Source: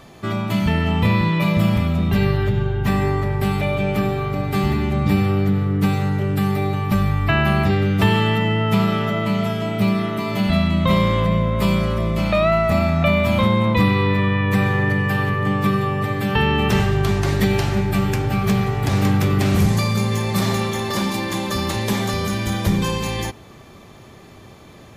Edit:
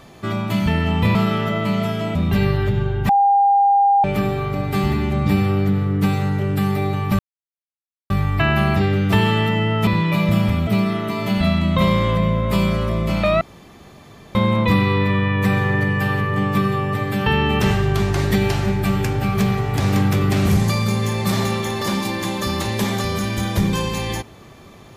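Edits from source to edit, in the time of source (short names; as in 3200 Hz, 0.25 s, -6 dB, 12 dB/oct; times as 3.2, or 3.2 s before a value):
1.15–1.95 swap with 8.76–9.76
2.89–3.84 bleep 802 Hz -11 dBFS
6.99 insert silence 0.91 s
12.5–13.44 room tone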